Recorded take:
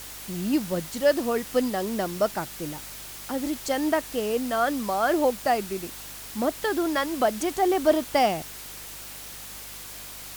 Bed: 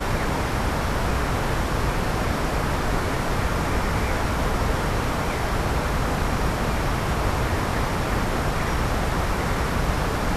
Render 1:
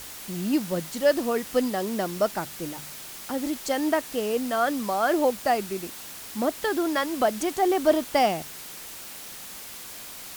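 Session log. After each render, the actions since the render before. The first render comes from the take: de-hum 50 Hz, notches 3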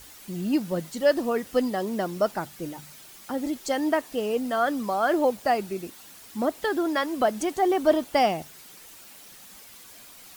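noise reduction 9 dB, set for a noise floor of -41 dBFS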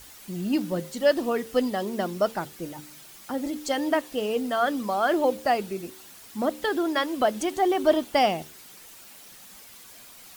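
de-hum 75.23 Hz, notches 7; dynamic bell 3.2 kHz, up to +4 dB, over -46 dBFS, Q 2.1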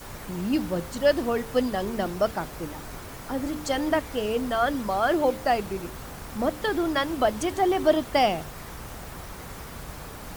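add bed -16.5 dB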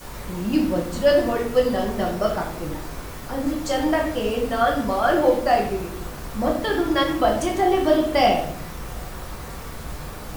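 simulated room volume 130 m³, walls mixed, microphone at 0.97 m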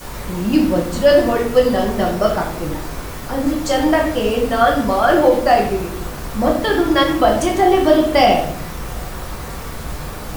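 trim +6 dB; peak limiter -2 dBFS, peak gain reduction 2.5 dB

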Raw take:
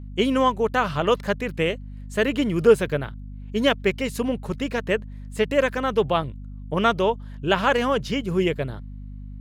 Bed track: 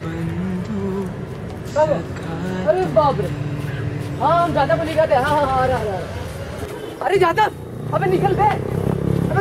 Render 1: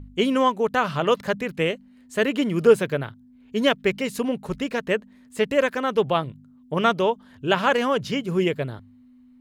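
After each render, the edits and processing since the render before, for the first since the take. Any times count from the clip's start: de-hum 50 Hz, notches 4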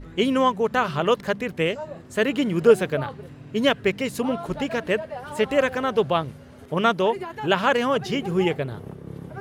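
add bed track -18.5 dB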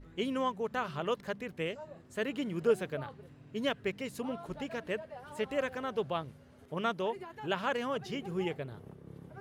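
trim -12.5 dB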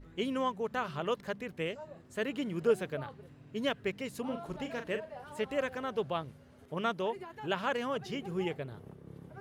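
4.23–5.24 s: doubling 41 ms -8 dB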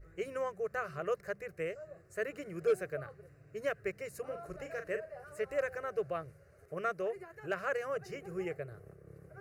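static phaser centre 910 Hz, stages 6; overload inside the chain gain 23 dB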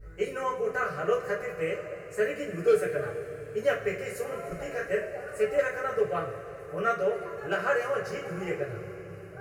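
two-slope reverb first 0.28 s, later 4.5 s, from -20 dB, DRR -7.5 dB

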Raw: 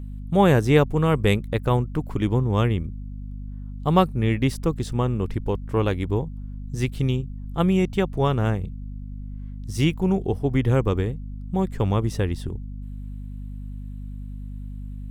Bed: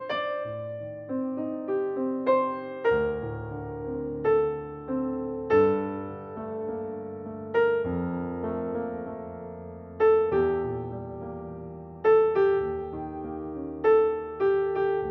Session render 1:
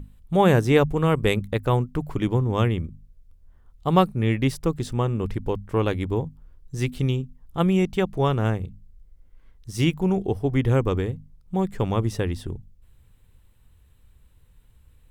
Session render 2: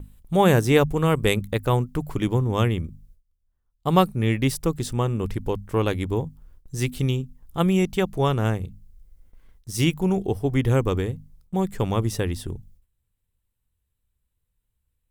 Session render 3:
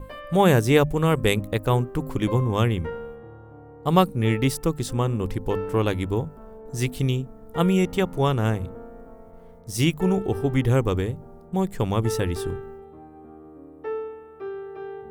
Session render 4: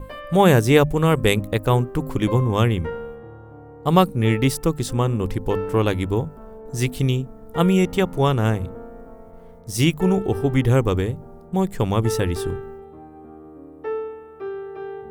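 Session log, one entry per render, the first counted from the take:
hum notches 50/100/150/200/250 Hz
gate with hold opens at -41 dBFS; treble shelf 6 kHz +10.5 dB
add bed -10 dB
trim +3 dB; peak limiter -1 dBFS, peak gain reduction 1 dB

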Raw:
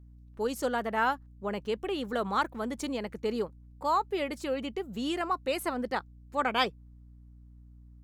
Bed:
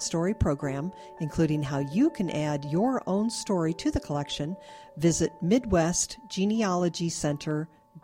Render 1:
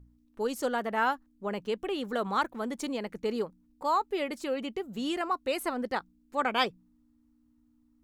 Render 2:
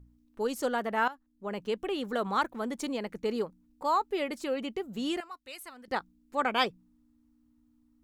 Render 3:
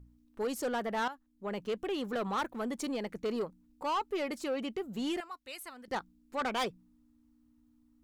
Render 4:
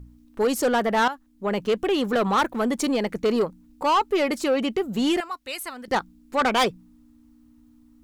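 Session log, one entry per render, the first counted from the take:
de-hum 60 Hz, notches 3
1.08–1.67 s: fade in, from -16.5 dB; 5.20–5.88 s: amplifier tone stack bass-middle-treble 5-5-5
saturation -27.5 dBFS, distortion -10 dB
trim +12 dB

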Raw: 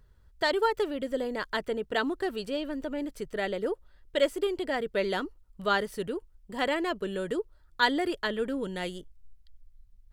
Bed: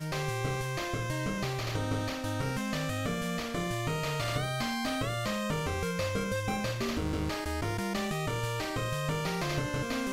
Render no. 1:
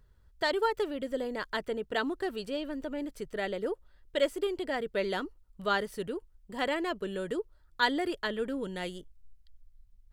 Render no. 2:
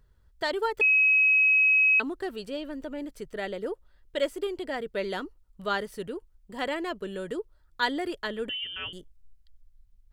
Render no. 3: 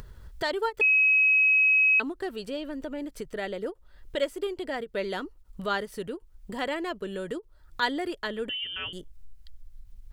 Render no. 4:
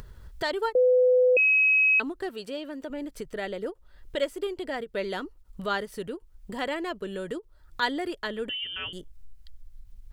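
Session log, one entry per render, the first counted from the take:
trim -2.5 dB
0.81–2.00 s: bleep 2.55 kHz -17.5 dBFS; 8.49–8.93 s: frequency inversion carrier 3.3 kHz
upward compressor, threshold -30 dBFS; endings held to a fixed fall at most 470 dB/s
0.75–1.37 s: bleep 503 Hz -16.5 dBFS; 2.29–2.90 s: high-pass 230 Hz 6 dB/octave

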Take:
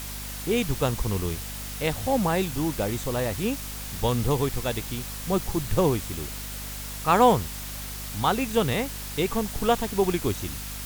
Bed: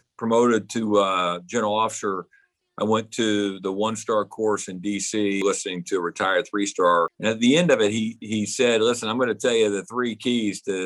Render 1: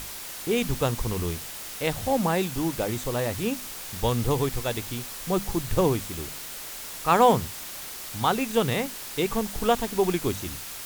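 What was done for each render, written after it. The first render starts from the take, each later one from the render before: hum notches 50/100/150/200/250 Hz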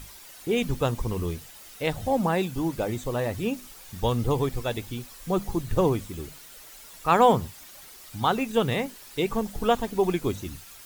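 noise reduction 11 dB, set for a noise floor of -38 dBFS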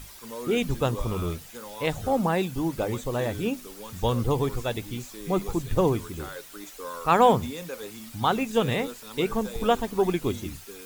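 add bed -19 dB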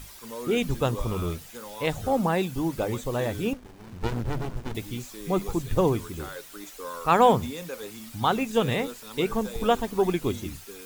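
3.53–4.75 s: sliding maximum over 65 samples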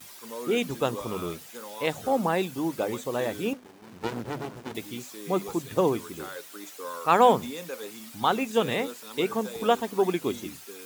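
high-pass 210 Hz 12 dB/octave; gate with hold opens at -38 dBFS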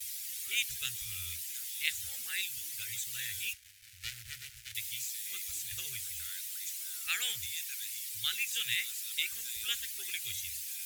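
inverse Chebyshev band-stop 160–1100 Hz, stop band 40 dB; peaking EQ 12 kHz +8.5 dB 1.8 oct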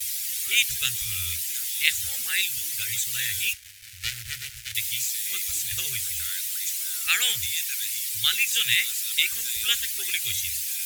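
trim +11 dB

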